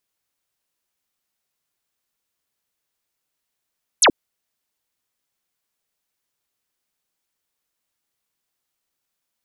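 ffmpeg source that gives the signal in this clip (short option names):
-f lavfi -i "aevalsrc='0.335*clip(t/0.002,0,1)*clip((0.08-t)/0.002,0,1)*sin(2*PI*12000*0.08/log(230/12000)*(exp(log(230/12000)*t/0.08)-1))':d=0.08:s=44100"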